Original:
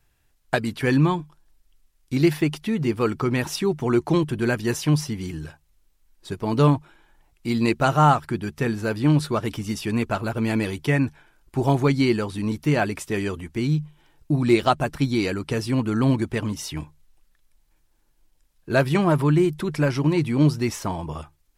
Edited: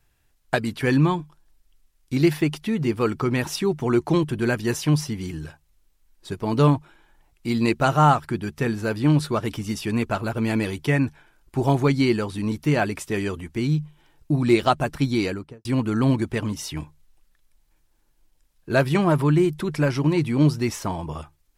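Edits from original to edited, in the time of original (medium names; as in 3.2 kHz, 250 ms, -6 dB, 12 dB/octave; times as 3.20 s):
15.20–15.65 s: studio fade out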